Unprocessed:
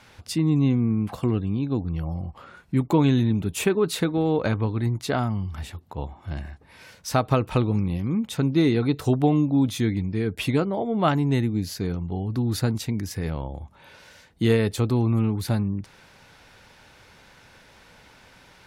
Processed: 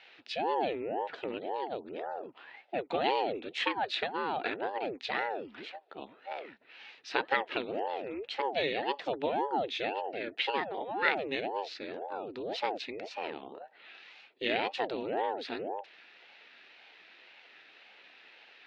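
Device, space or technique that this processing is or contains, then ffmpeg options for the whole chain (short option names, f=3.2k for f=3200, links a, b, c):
voice changer toy: -af "aeval=exprs='val(0)*sin(2*PI*420*n/s+420*0.7/1.9*sin(2*PI*1.9*n/s))':c=same,highpass=470,equalizer=f=590:t=q:w=4:g=-4,equalizer=f=1.1k:t=q:w=4:g=-9,equalizer=f=1.8k:t=q:w=4:g=5,equalizer=f=2.6k:t=q:w=4:g=9,equalizer=f=3.8k:t=q:w=4:g=5,lowpass=f=4.3k:w=0.5412,lowpass=f=4.3k:w=1.3066,volume=-3dB"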